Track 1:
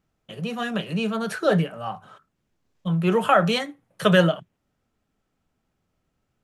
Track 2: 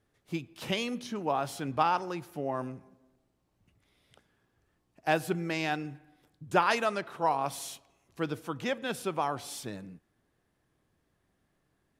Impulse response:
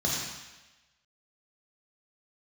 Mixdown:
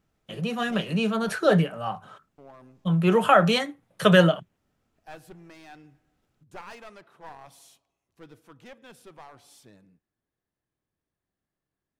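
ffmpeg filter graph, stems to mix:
-filter_complex "[0:a]volume=1.06[s0];[1:a]aeval=exprs='clip(val(0),-1,0.0251)':c=same,volume=0.211,asplit=3[s1][s2][s3];[s1]atrim=end=1.3,asetpts=PTS-STARTPTS,afade=t=out:st=1.296:d=0.004:c=hsin[s4];[s2]atrim=start=1.3:end=2.38,asetpts=PTS-STARTPTS,volume=0[s5];[s3]atrim=start=2.38,asetpts=PTS-STARTPTS,afade=t=in:d=0.004:c=hsin[s6];[s4][s5][s6]concat=n=3:v=0:a=1[s7];[s0][s7]amix=inputs=2:normalize=0"

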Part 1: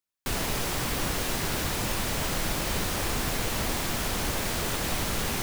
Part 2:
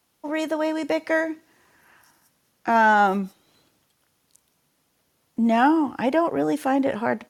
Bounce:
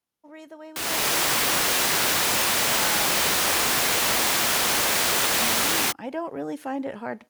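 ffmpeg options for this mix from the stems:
-filter_complex "[0:a]highpass=f=800:p=1,dynaudnorm=f=270:g=3:m=3.16,adelay=500,volume=1[s0];[1:a]volume=0.376,afade=t=in:st=5.7:d=0.63:silence=0.334965[s1];[s0][s1]amix=inputs=2:normalize=0"

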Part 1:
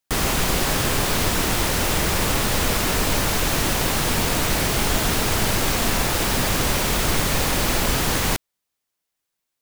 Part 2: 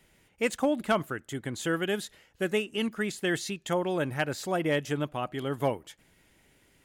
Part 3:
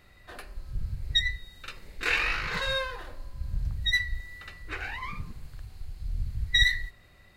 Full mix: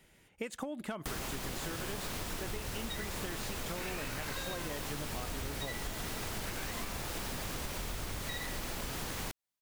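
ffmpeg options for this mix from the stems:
-filter_complex "[0:a]adelay=950,volume=0.335[s0];[1:a]acompressor=threshold=0.0355:ratio=6,volume=0.944[s1];[2:a]alimiter=limit=0.0794:level=0:latency=1:release=260,adelay=1750,volume=0.841[s2];[s0][s1][s2]amix=inputs=3:normalize=0,acompressor=threshold=0.0178:ratio=10"

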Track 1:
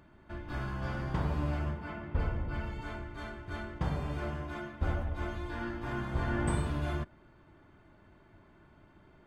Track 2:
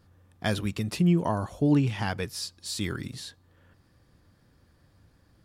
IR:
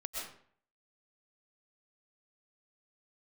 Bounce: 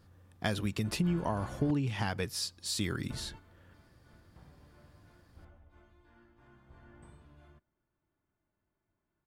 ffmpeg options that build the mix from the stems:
-filter_complex "[0:a]adelay=550,volume=0.355,asplit=3[s0][s1][s2];[s0]atrim=end=1.71,asetpts=PTS-STARTPTS,afade=t=out:st=1.706:d=0.004:c=hsin[s3];[s1]atrim=start=1.71:end=3.1,asetpts=PTS-STARTPTS,volume=0[s4];[s2]atrim=start=3.1,asetpts=PTS-STARTPTS,afade=t=in:d=0.004:c=hsin[s5];[s3][s4][s5]concat=n=3:v=0:a=1[s6];[1:a]acompressor=threshold=0.0447:ratio=6,volume=0.944,asplit=2[s7][s8];[s8]apad=whole_len=433001[s9];[s6][s9]sidechaingate=range=0.158:threshold=0.00282:ratio=16:detection=peak[s10];[s10][s7]amix=inputs=2:normalize=0"

